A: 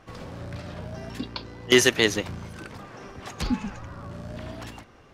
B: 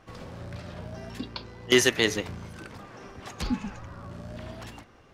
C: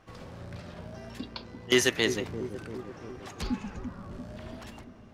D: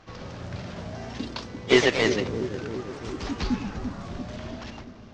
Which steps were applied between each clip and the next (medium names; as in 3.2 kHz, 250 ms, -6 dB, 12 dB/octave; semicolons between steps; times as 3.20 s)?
de-hum 144.8 Hz, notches 18; trim -2.5 dB
feedback echo behind a low-pass 342 ms, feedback 61%, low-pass 520 Hz, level -7.5 dB; trim -3 dB
CVSD coder 32 kbps; ever faster or slower copies 173 ms, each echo +2 st, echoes 2, each echo -6 dB; trim +5.5 dB